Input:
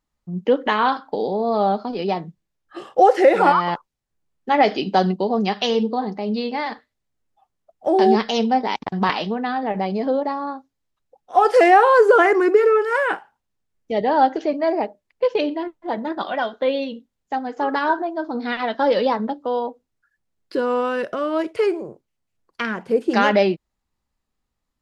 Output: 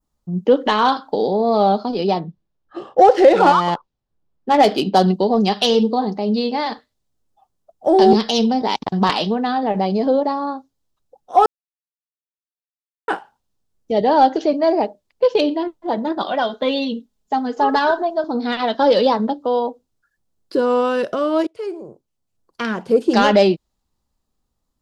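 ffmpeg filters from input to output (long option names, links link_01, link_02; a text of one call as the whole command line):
ffmpeg -i in.wav -filter_complex "[0:a]asettb=1/sr,asplit=3[link_01][link_02][link_03];[link_01]atrim=end=2.194[link_04];[link_02]atrim=start=2.19:end=5.08,asetpts=PTS-STARTPTS,afade=type=in:duration=0.004:curve=qsin,afade=type=out:start_time=2.886:duration=0.004:curve=qsin,adynamicsmooth=sensitivity=2.5:basefreq=3400[link_05];[link_03]atrim=start=5.076[link_06];[link_04][link_05]acrossfade=duration=0.004:curve1=hsin:curve2=qsin[link_07];[link_07][link_06]acrossfade=duration=0.004:curve1=qsin:curve2=hsin,asettb=1/sr,asplit=3[link_08][link_09][link_10];[link_08]atrim=end=8.134[link_11];[link_09]atrim=start=8.13:end=8.62,asetpts=PTS-STARTPTS,afade=type=in:duration=0.004:curve=qsin,afade=type=out:start_time=0.486:duration=0.004:curve=qsin,acrossover=split=380|3000[link_12][link_13][link_14];[link_13]acompressor=threshold=-24dB:ratio=6:attack=3.2:release=140:knee=2.83:detection=peak[link_15];[link_12][link_15][link_14]amix=inputs=3:normalize=0[link_16];[link_10]atrim=start=8.616[link_17];[link_11][link_16]acrossfade=duration=0.004:curve1=hsin:curve2=qsin[link_18];[link_18][link_17]acrossfade=duration=0.004:curve1=qsin:curve2=hsin,asettb=1/sr,asplit=3[link_19][link_20][link_21];[link_19]atrim=end=16.494[link_22];[link_20]atrim=start=16.49:end=18.24,asetpts=PTS-STARTPTS,afade=type=in:duration=0.004:curve=qsin,afade=type=out:start_time=1.746:duration=0.004:curve=qsin,aecho=1:1:4.7:0.65,atrim=end_sample=77175[link_23];[link_21]atrim=start=18.236[link_24];[link_22][link_23]acrossfade=duration=0.004:curve1=hsin:curve2=qsin[link_25];[link_25][link_24]acrossfade=duration=0.004:curve1=qsin:curve2=hsin,asplit=4[link_26][link_27][link_28][link_29];[link_26]atrim=end=11.46,asetpts=PTS-STARTPTS,afade=type=out:start_time=11.456:duration=0.004:curve=hsin[link_30];[link_27]atrim=start=11.46:end=13.08,asetpts=PTS-STARTPTS,volume=0[link_31];[link_28]atrim=start=13.08:end=21.47,asetpts=PTS-STARTPTS,afade=type=in:duration=0.004:curve=hsin,afade=type=out:start_time=8.386:duration=0.004:curve=hsin:silence=0.0794328[link_32];[link_29]atrim=start=21.47,asetpts=PTS-STARTPTS,afade=type=in:duration=1.55:curve=qsin:silence=0.0794328[link_33];[link_30][link_31][link_32][link_33]concat=n=4:v=0:a=1,adynamicequalizer=threshold=0.0158:dfrequency=3500:dqfactor=0.73:tfrequency=3500:tqfactor=0.73:attack=5:release=100:ratio=0.375:range=3.5:mode=boostabove:tftype=bell,acontrast=21,equalizer=frequency=2100:width=1.1:gain=-10" out.wav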